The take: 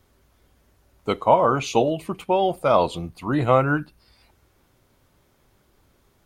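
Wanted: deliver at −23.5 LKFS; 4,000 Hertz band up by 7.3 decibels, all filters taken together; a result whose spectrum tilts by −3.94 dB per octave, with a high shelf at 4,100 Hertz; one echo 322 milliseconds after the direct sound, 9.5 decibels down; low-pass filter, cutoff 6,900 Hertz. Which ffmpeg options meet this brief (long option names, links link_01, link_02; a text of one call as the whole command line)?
ffmpeg -i in.wav -af "lowpass=6900,equalizer=frequency=4000:width_type=o:gain=7,highshelf=frequency=4100:gain=5.5,aecho=1:1:322:0.335,volume=-3dB" out.wav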